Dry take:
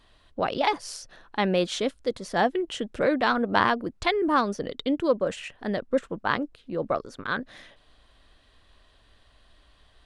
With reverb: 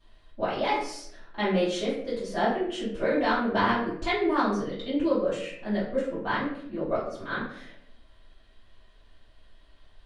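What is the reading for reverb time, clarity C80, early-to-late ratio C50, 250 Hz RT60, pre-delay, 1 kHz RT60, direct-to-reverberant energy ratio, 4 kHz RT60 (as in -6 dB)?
0.70 s, 7.0 dB, 3.5 dB, 0.85 s, 3 ms, 0.60 s, -13.5 dB, 0.45 s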